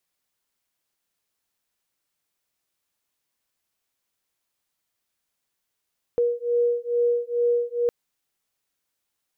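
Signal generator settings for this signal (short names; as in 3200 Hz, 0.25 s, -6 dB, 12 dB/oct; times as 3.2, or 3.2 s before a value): beating tones 477 Hz, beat 2.3 Hz, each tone -23 dBFS 1.71 s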